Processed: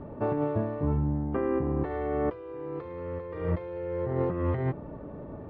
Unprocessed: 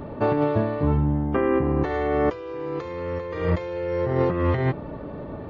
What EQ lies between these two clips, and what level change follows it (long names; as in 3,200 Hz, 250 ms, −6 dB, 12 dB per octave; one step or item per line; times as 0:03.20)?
high-frequency loss of the air 270 metres
high-shelf EQ 2,000 Hz −7.5 dB
−5.5 dB